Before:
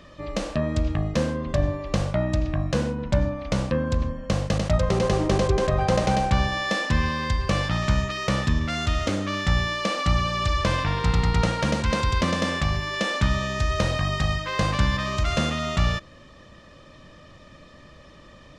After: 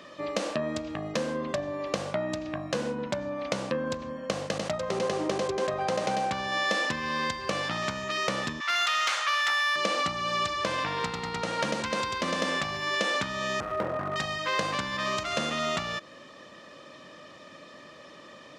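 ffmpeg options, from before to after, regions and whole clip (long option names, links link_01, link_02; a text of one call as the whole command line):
ffmpeg -i in.wav -filter_complex "[0:a]asettb=1/sr,asplit=3[link_01][link_02][link_03];[link_01]atrim=end=8.604[link_04];[link_02]atrim=start=8.6:end=9.76,asetpts=PTS-STARTPTS,afade=type=in:duration=0.004:curve=qsin,afade=type=out:start_time=1.156:duration=0.004:curve=qsin,highpass=frequency=950:width=0.5412,highpass=frequency=950:width=1.3066,asplit=2[link_05][link_06];[link_06]highpass=frequency=720:poles=1,volume=13dB,asoftclip=type=tanh:threshold=-16dB[link_07];[link_05][link_07]amix=inputs=2:normalize=0,lowpass=frequency=4800:poles=1,volume=-6dB[link_08];[link_03]atrim=start=9.756[link_09];[link_04][link_08]acrossfade=duration=0.004:curve1=hsin:curve2=qsin[link_10];[link_10][link_09]acrossfade=duration=0.004:curve1=qsin:curve2=hsin,asettb=1/sr,asplit=3[link_11][link_12][link_13];[link_11]atrim=end=13.604[link_14];[link_12]atrim=start=13.6:end=14.16,asetpts=PTS-STARTPTS,afade=type=in:duration=0.004:curve=qsin,afade=type=out:start_time=0.556:duration=0.004:curve=qsin,lowpass=frequency=1400:width=0.5412,lowpass=frequency=1400:width=1.3066,asoftclip=type=hard:threshold=-22dB[link_15];[link_13]atrim=start=14.156[link_16];[link_14][link_15]acrossfade=duration=0.004:curve1=hsin:curve2=qsin[link_17];[link_17][link_16]acrossfade=duration=0.004:curve1=qsin:curve2=hsin,acompressor=threshold=-25dB:ratio=6,highpass=270,volume=2.5dB" out.wav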